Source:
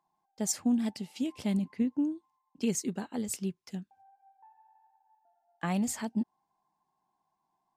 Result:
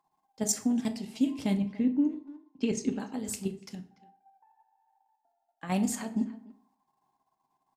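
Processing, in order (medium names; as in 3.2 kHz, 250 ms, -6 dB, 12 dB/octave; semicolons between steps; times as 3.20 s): 1.54–3.00 s: low-pass 4.7 kHz 12 dB/octave; level held to a coarse grid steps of 10 dB; 3.75–5.72 s: feedback comb 90 Hz, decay 0.52 s, harmonics all, mix 40%; speakerphone echo 290 ms, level -17 dB; reverberation RT60 0.50 s, pre-delay 4 ms, DRR 6.5 dB; trim +4.5 dB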